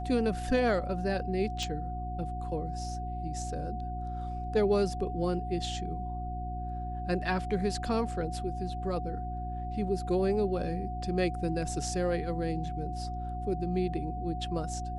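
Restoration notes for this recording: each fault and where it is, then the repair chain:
mains hum 60 Hz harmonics 6 −37 dBFS
whistle 730 Hz −38 dBFS
0:01.63: click −22 dBFS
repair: click removal
notch filter 730 Hz, Q 30
hum removal 60 Hz, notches 6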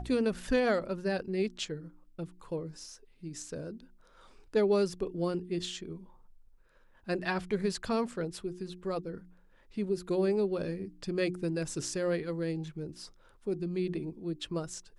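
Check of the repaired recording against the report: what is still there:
none of them is left

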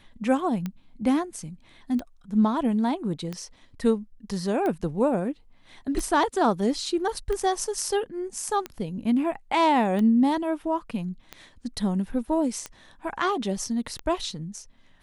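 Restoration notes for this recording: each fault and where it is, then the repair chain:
scratch tick 45 rpm −18 dBFS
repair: click removal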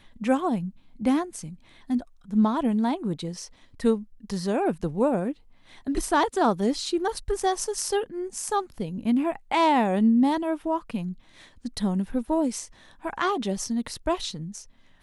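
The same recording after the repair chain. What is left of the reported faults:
none of them is left

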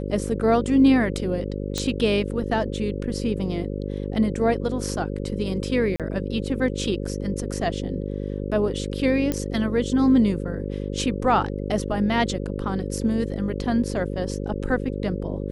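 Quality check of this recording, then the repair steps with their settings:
mains buzz 50 Hz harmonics 11 −29 dBFS
0:01.78: click −11 dBFS
0:05.96–0:06.00: drop-out 37 ms
0:09.32: click −11 dBFS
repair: click removal
hum removal 50 Hz, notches 11
repair the gap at 0:05.96, 37 ms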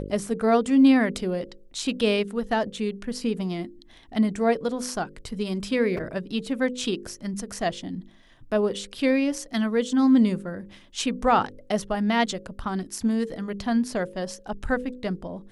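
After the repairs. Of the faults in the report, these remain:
0:01.78: click

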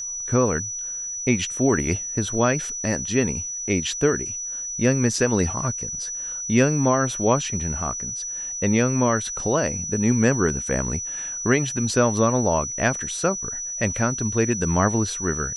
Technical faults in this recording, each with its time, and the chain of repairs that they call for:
whistle 5,900 Hz −28 dBFS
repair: notch filter 5,900 Hz, Q 30

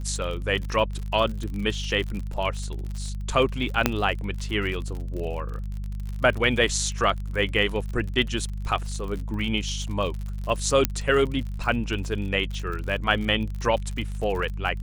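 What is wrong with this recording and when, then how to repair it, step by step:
surface crackle 52 per second −31 dBFS
mains hum 50 Hz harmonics 4 −31 dBFS
0:03.86: click −3 dBFS
0:10.85: click −3 dBFS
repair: click removal
hum removal 50 Hz, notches 4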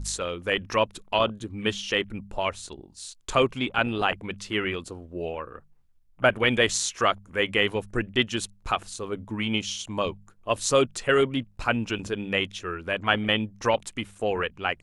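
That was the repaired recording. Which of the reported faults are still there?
none of them is left

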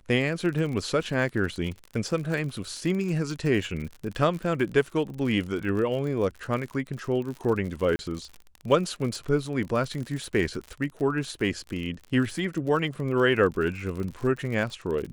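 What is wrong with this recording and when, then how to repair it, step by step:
surface crackle 52 per second −32 dBFS
0:07.96–0:07.99: drop-out 30 ms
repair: click removal
repair the gap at 0:07.96, 30 ms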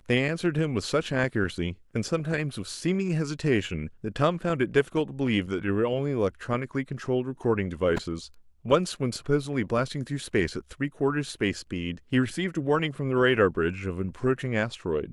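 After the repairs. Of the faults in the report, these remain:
none of them is left

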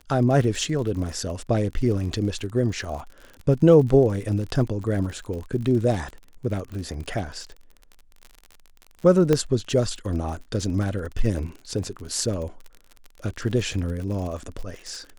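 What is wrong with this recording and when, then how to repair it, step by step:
surface crackle 51 per second −32 dBFS
0:09.33: click −8 dBFS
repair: click removal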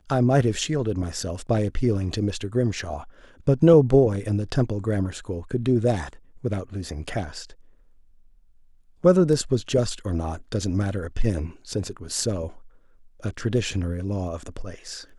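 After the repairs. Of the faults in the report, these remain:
0:09.33: click

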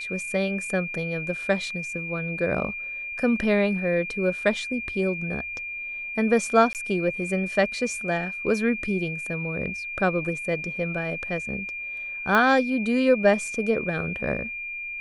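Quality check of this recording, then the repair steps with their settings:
whistle 2,400 Hz −31 dBFS
0:06.73–0:06.75: drop-out 18 ms
0:12.35: click −10 dBFS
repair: click removal
notch filter 2,400 Hz, Q 30
repair the gap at 0:06.73, 18 ms

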